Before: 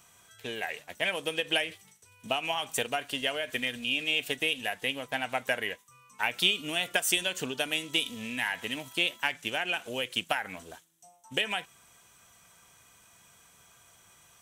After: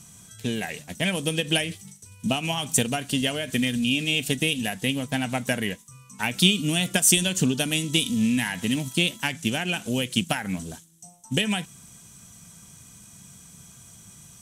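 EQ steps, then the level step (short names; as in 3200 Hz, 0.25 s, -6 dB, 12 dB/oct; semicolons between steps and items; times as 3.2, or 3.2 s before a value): LPF 11000 Hz 12 dB/oct; tone controls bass +13 dB, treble +14 dB; bell 200 Hz +11.5 dB 1.5 oct; 0.0 dB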